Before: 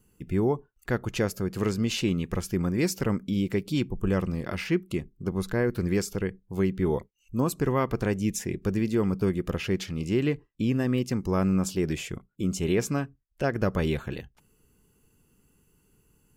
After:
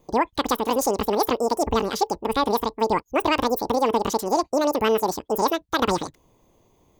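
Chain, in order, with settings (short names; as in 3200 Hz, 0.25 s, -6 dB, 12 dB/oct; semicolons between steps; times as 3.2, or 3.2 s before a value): speed mistake 33 rpm record played at 78 rpm; gain +4.5 dB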